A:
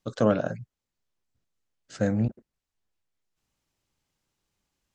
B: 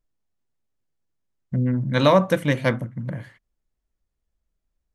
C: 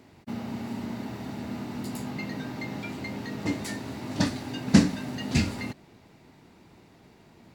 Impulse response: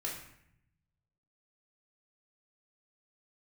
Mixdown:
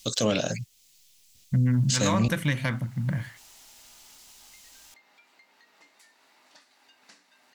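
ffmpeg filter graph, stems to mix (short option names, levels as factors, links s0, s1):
-filter_complex "[0:a]aexciter=amount=9.5:drive=4.4:freq=2200,volume=1.33[s0];[1:a]equalizer=f=450:w=0.91:g=-13.5,volume=0.794[s1];[2:a]highpass=1000,acompressor=threshold=0.00251:ratio=2.5,adelay=2350,volume=0.355[s2];[s0][s1]amix=inputs=2:normalize=0,acontrast=83,alimiter=limit=0.251:level=0:latency=1:release=427,volume=1[s3];[s2][s3]amix=inputs=2:normalize=0,alimiter=limit=0.168:level=0:latency=1:release=62"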